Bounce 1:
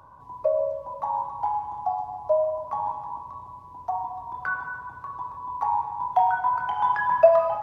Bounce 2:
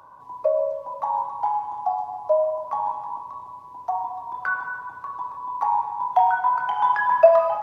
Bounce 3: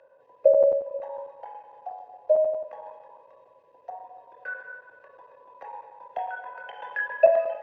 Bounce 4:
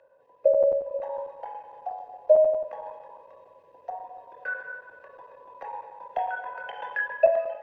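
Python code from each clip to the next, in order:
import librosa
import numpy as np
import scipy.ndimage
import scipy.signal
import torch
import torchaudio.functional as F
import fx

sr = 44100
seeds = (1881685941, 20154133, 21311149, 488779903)

y1 = fx.highpass(x, sr, hz=390.0, slope=6)
y1 = y1 * librosa.db_to_amplitude(3.5)
y2 = fx.vowel_filter(y1, sr, vowel='e')
y2 = y2 + 0.37 * np.pad(y2, (int(1.9 * sr / 1000.0), 0))[:len(y2)]
y2 = fx.chopper(y2, sr, hz=11.0, depth_pct=65, duty_pct=90)
y2 = y2 * librosa.db_to_amplitude(7.5)
y3 = fx.hum_notches(y2, sr, base_hz=60, count=2)
y3 = fx.rider(y3, sr, range_db=3, speed_s=0.5)
y3 = fx.low_shelf(y3, sr, hz=100.0, db=9.0)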